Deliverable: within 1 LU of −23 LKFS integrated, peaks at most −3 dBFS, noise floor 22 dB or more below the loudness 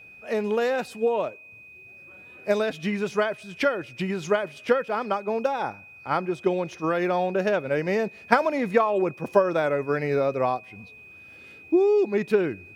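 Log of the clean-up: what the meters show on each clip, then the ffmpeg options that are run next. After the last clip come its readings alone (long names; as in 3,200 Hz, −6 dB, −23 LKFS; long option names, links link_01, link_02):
interfering tone 2,500 Hz; level of the tone −45 dBFS; integrated loudness −25.0 LKFS; sample peak −1.0 dBFS; target loudness −23.0 LKFS
→ -af "bandreject=frequency=2500:width=30"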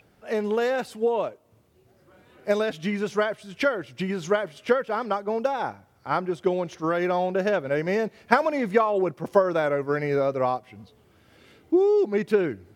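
interfering tone none found; integrated loudness −25.0 LKFS; sample peak −1.5 dBFS; target loudness −23.0 LKFS
→ -af "volume=2dB,alimiter=limit=-3dB:level=0:latency=1"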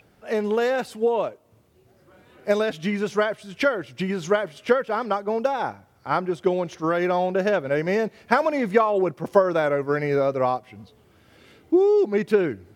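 integrated loudness −23.5 LKFS; sample peak −3.0 dBFS; background noise floor −59 dBFS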